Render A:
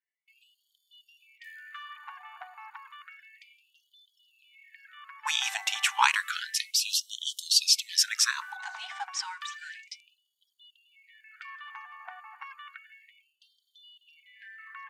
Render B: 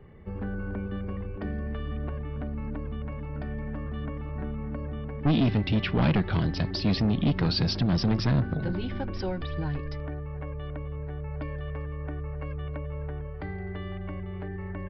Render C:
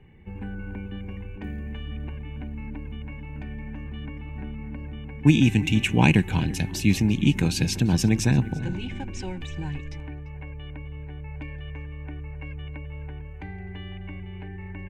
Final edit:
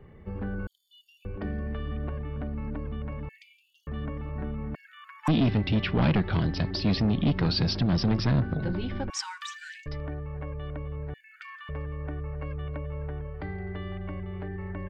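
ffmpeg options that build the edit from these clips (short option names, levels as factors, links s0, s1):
-filter_complex "[0:a]asplit=5[s0][s1][s2][s3][s4];[1:a]asplit=6[s5][s6][s7][s8][s9][s10];[s5]atrim=end=0.672[s11];[s0]atrim=start=0.668:end=1.252[s12];[s6]atrim=start=1.248:end=3.292[s13];[s1]atrim=start=3.288:end=3.872[s14];[s7]atrim=start=3.868:end=4.752[s15];[s2]atrim=start=4.748:end=5.282[s16];[s8]atrim=start=5.278:end=9.102[s17];[s3]atrim=start=9.098:end=9.862[s18];[s9]atrim=start=9.858:end=11.142[s19];[s4]atrim=start=11.138:end=11.692[s20];[s10]atrim=start=11.688[s21];[s11][s12]acrossfade=d=0.004:c1=hsin:c2=hsin[s22];[s22][s13]acrossfade=d=0.004:c1=hsin:c2=hsin[s23];[s23][s14]acrossfade=d=0.004:c1=hsin:c2=hsin[s24];[s24][s15]acrossfade=d=0.004:c1=hsin:c2=hsin[s25];[s25][s16]acrossfade=d=0.004:c1=hsin:c2=hsin[s26];[s26][s17]acrossfade=d=0.004:c1=hsin:c2=hsin[s27];[s27][s18]acrossfade=d=0.004:c1=hsin:c2=hsin[s28];[s28][s19]acrossfade=d=0.004:c1=hsin:c2=hsin[s29];[s29][s20]acrossfade=d=0.004:c1=hsin:c2=hsin[s30];[s30][s21]acrossfade=d=0.004:c1=hsin:c2=hsin"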